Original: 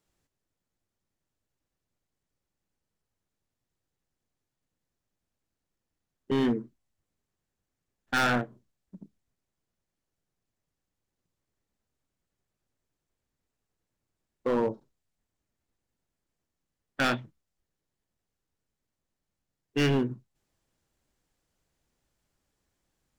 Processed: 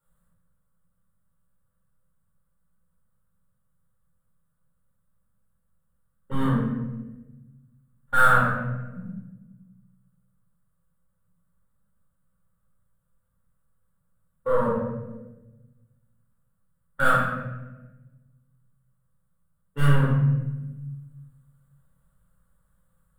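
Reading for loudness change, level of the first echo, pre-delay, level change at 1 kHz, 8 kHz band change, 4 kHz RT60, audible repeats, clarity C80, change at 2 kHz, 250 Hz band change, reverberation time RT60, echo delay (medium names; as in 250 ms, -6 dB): +4.5 dB, no echo, 4 ms, +9.5 dB, +1.0 dB, 0.70 s, no echo, 3.0 dB, +7.0 dB, +2.5 dB, 1.1 s, no echo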